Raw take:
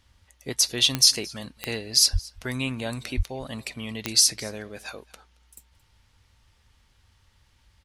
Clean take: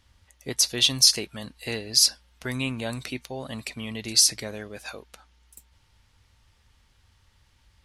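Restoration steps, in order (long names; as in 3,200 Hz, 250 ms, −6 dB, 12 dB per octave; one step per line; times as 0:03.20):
click removal
0:02.12–0:02.24: high-pass filter 140 Hz 24 dB per octave
0:03.16–0:03.28: high-pass filter 140 Hz 24 dB per octave
echo removal 223 ms −23.5 dB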